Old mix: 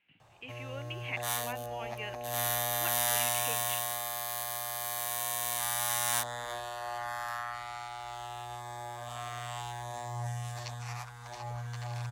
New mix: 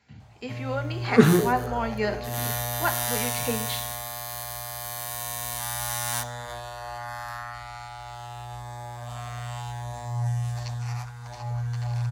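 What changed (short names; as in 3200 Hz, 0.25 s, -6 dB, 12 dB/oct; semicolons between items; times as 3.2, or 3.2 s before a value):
speech: remove ladder low-pass 3000 Hz, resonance 75%; second sound: unmuted; reverb: on, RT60 0.70 s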